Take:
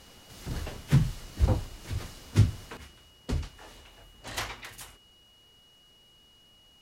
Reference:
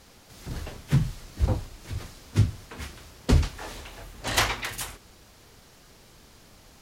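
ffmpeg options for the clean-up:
-af "bandreject=f=2900:w=30,asetnsamples=n=441:p=0,asendcmd='2.77 volume volume 11dB',volume=1"

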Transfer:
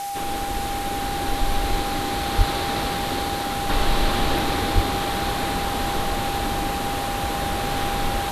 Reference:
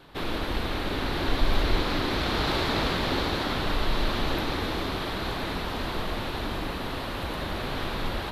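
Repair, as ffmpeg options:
-filter_complex "[0:a]bandreject=f=800:w=30,asplit=3[s0][s1][s2];[s0]afade=t=out:st=2.37:d=0.02[s3];[s1]highpass=f=140:w=0.5412,highpass=f=140:w=1.3066,afade=t=in:st=2.37:d=0.02,afade=t=out:st=2.49:d=0.02[s4];[s2]afade=t=in:st=2.49:d=0.02[s5];[s3][s4][s5]amix=inputs=3:normalize=0,asplit=3[s6][s7][s8];[s6]afade=t=out:st=4.74:d=0.02[s9];[s7]highpass=f=140:w=0.5412,highpass=f=140:w=1.3066,afade=t=in:st=4.74:d=0.02,afade=t=out:st=4.86:d=0.02[s10];[s8]afade=t=in:st=4.86:d=0.02[s11];[s9][s10][s11]amix=inputs=3:normalize=0,afwtdn=0.016,asetnsamples=n=441:p=0,asendcmd='3.69 volume volume -5dB',volume=1"

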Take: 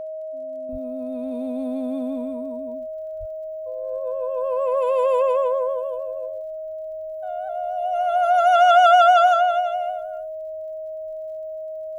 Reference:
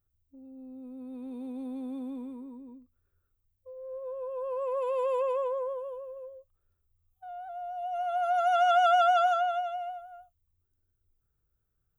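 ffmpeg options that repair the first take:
-filter_complex "[0:a]adeclick=t=4,bandreject=f=630:w=30,asplit=3[s0][s1][s2];[s0]afade=t=out:st=0.71:d=0.02[s3];[s1]highpass=f=140:w=0.5412,highpass=f=140:w=1.3066,afade=t=in:st=0.71:d=0.02,afade=t=out:st=0.83:d=0.02[s4];[s2]afade=t=in:st=0.83:d=0.02[s5];[s3][s4][s5]amix=inputs=3:normalize=0,asplit=3[s6][s7][s8];[s6]afade=t=out:st=3.19:d=0.02[s9];[s7]highpass=f=140:w=0.5412,highpass=f=140:w=1.3066,afade=t=in:st=3.19:d=0.02,afade=t=out:st=3.31:d=0.02[s10];[s8]afade=t=in:st=3.31:d=0.02[s11];[s9][s10][s11]amix=inputs=3:normalize=0,asetnsamples=n=441:p=0,asendcmd='0.69 volume volume -9.5dB',volume=1"

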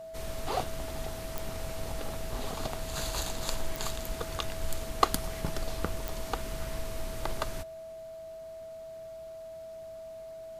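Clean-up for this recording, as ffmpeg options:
-af "adeclick=t=4,bandreject=f=650:w=30"

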